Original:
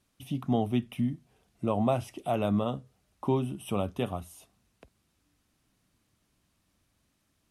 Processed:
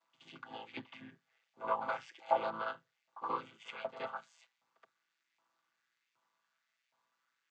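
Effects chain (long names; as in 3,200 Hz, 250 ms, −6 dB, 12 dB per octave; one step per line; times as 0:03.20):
channel vocoder with a chord as carrier minor triad, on A2
echo ahead of the sound 73 ms −12 dB
auto-filter high-pass saw up 1.3 Hz 930–2,300 Hz
level +5.5 dB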